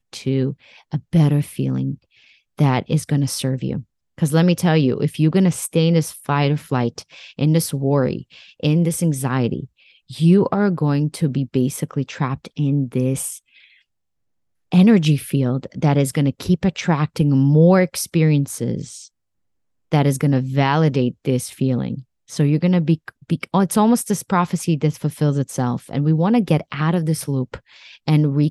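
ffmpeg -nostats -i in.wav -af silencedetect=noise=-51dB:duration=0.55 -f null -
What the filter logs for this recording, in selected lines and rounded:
silence_start: 13.82
silence_end: 14.72 | silence_duration: 0.90
silence_start: 19.08
silence_end: 19.92 | silence_duration: 0.84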